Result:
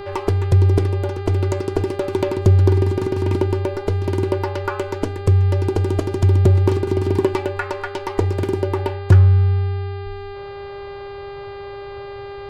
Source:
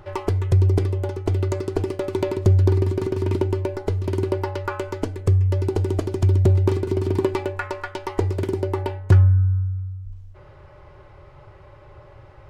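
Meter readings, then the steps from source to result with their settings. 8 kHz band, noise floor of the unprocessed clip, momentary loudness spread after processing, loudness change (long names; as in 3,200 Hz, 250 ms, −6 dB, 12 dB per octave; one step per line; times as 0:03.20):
can't be measured, −46 dBFS, 18 LU, +3.0 dB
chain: hum with harmonics 400 Hz, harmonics 12, −36 dBFS −8 dB per octave
level +3 dB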